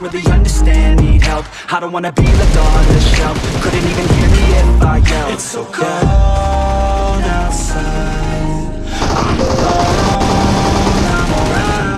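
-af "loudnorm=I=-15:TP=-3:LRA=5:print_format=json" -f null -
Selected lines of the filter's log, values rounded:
"input_i" : "-13.3",
"input_tp" : "-1.2",
"input_lra" : "2.9",
"input_thresh" : "-23.3",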